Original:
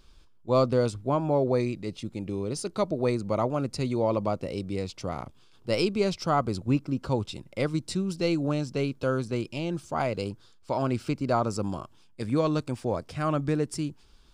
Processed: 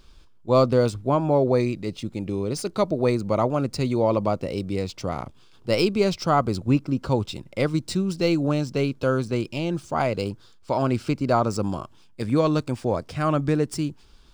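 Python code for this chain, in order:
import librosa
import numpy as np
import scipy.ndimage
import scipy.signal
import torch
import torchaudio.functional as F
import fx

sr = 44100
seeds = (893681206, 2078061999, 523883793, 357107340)

y = scipy.signal.medfilt(x, 3)
y = y * 10.0 ** (4.5 / 20.0)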